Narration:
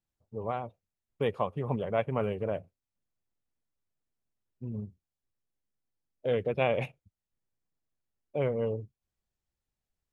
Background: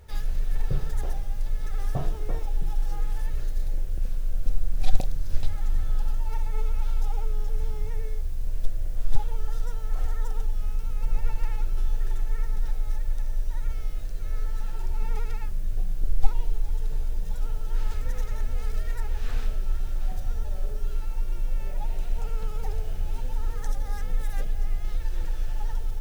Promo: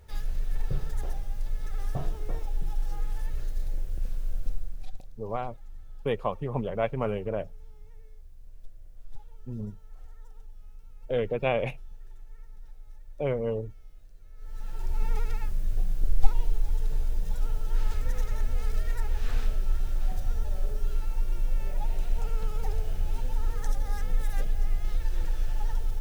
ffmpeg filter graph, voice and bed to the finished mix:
ffmpeg -i stem1.wav -i stem2.wav -filter_complex "[0:a]adelay=4850,volume=1dB[link_01];[1:a]volume=16.5dB,afade=type=out:start_time=4.32:duration=0.6:silence=0.149624,afade=type=in:start_time=14.37:duration=0.64:silence=0.1[link_02];[link_01][link_02]amix=inputs=2:normalize=0" out.wav

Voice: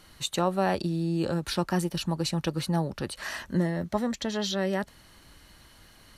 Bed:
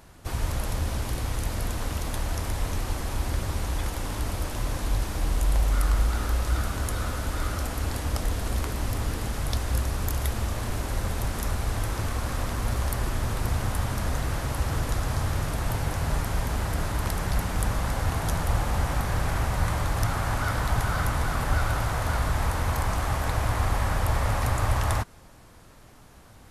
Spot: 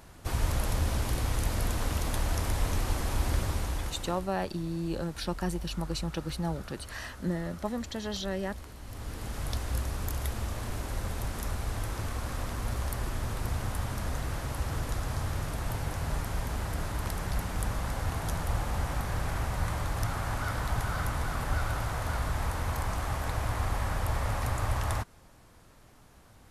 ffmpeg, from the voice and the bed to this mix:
ffmpeg -i stem1.wav -i stem2.wav -filter_complex "[0:a]adelay=3700,volume=-5.5dB[link_01];[1:a]volume=10.5dB,afade=type=out:start_time=3.37:duration=0.92:silence=0.158489,afade=type=in:start_time=8.84:duration=0.59:silence=0.281838[link_02];[link_01][link_02]amix=inputs=2:normalize=0" out.wav

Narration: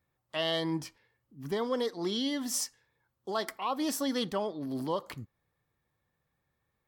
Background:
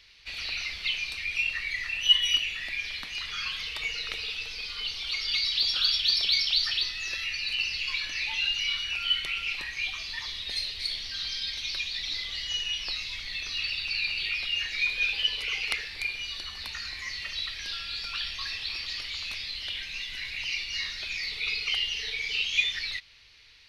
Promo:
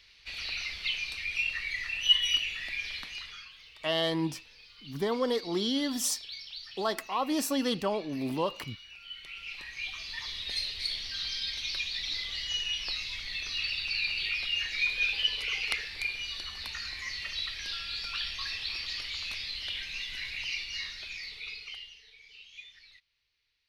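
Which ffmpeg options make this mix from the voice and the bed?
ffmpeg -i stem1.wav -i stem2.wav -filter_complex "[0:a]adelay=3500,volume=2dB[link_01];[1:a]volume=14dB,afade=type=out:start_time=2.98:duration=0.5:silence=0.16788,afade=type=in:start_time=9.11:duration=1.33:silence=0.149624,afade=type=out:start_time=20.2:duration=1.81:silence=0.0841395[link_02];[link_01][link_02]amix=inputs=2:normalize=0" out.wav

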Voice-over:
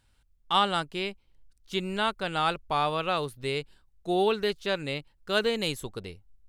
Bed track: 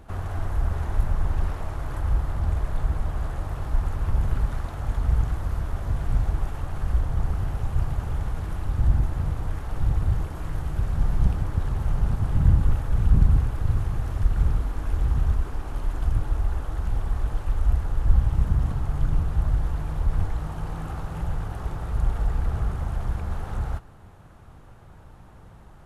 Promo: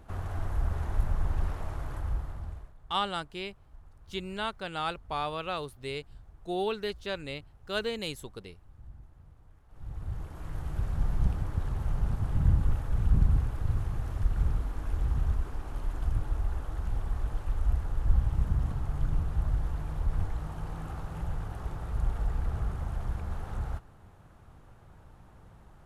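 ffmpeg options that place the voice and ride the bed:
ffmpeg -i stem1.wav -i stem2.wav -filter_complex "[0:a]adelay=2400,volume=-6dB[link_01];[1:a]volume=17.5dB,afade=type=out:start_time=1.76:duration=0.98:silence=0.0668344,afade=type=in:start_time=9.68:duration=1.06:silence=0.0749894[link_02];[link_01][link_02]amix=inputs=2:normalize=0" out.wav

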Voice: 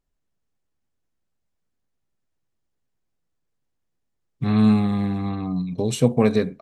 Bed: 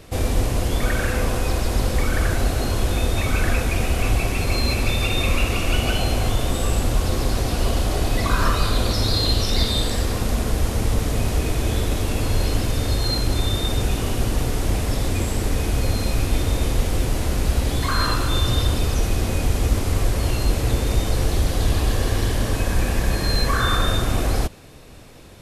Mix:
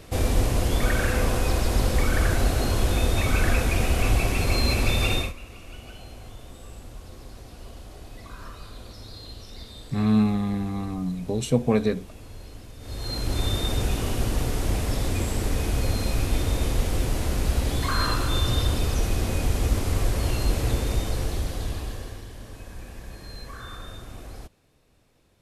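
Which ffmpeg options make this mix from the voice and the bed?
ffmpeg -i stem1.wav -i stem2.wav -filter_complex "[0:a]adelay=5500,volume=-3.5dB[link_01];[1:a]volume=16.5dB,afade=type=out:start_time=5.13:duration=0.2:silence=0.1,afade=type=in:start_time=12.79:duration=0.67:silence=0.125893,afade=type=out:start_time=20.65:duration=1.59:silence=0.158489[link_02];[link_01][link_02]amix=inputs=2:normalize=0" out.wav

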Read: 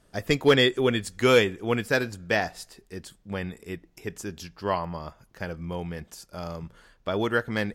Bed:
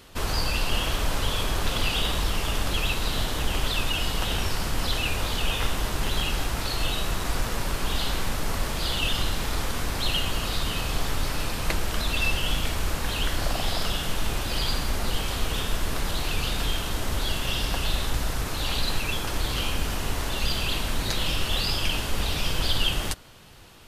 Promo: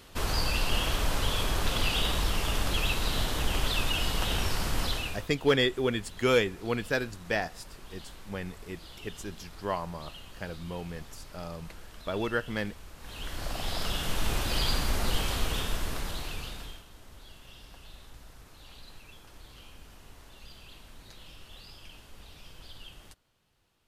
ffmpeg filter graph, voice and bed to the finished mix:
ffmpeg -i stem1.wav -i stem2.wav -filter_complex "[0:a]adelay=5000,volume=-5dB[link_01];[1:a]volume=17dB,afade=type=out:start_time=4.8:duration=0.48:silence=0.11885,afade=type=in:start_time=12.96:duration=1.38:silence=0.105925,afade=type=out:start_time=15.23:duration=1.62:silence=0.0794328[link_02];[link_01][link_02]amix=inputs=2:normalize=0" out.wav

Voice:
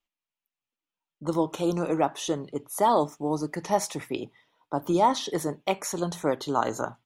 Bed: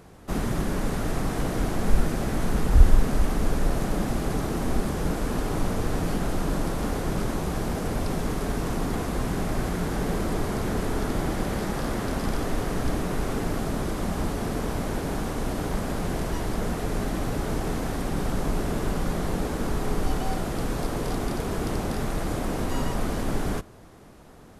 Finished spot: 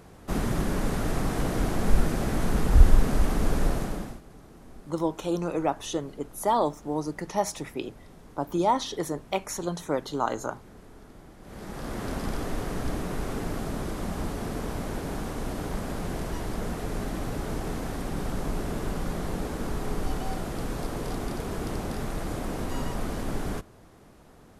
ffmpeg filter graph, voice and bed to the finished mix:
ffmpeg -i stem1.wav -i stem2.wav -filter_complex "[0:a]adelay=3650,volume=-2dB[link_01];[1:a]volume=18dB,afade=type=out:start_time=3.65:duration=0.56:silence=0.0794328,afade=type=in:start_time=11.41:duration=0.68:silence=0.11885[link_02];[link_01][link_02]amix=inputs=2:normalize=0" out.wav

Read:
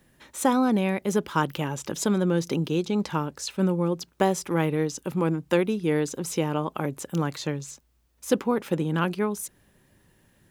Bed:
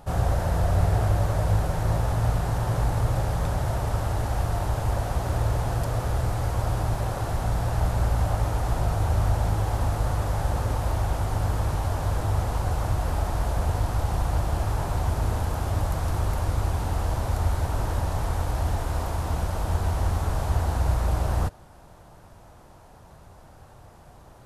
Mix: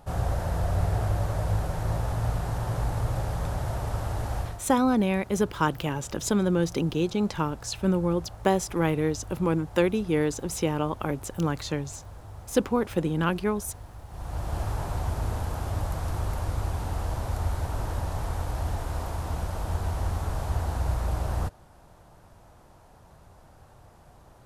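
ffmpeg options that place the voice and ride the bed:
ffmpeg -i stem1.wav -i stem2.wav -filter_complex "[0:a]adelay=4250,volume=-0.5dB[link_01];[1:a]volume=10.5dB,afade=type=out:start_time=4.37:duration=0.24:silence=0.188365,afade=type=in:start_time=14.09:duration=0.5:silence=0.188365[link_02];[link_01][link_02]amix=inputs=2:normalize=0" out.wav

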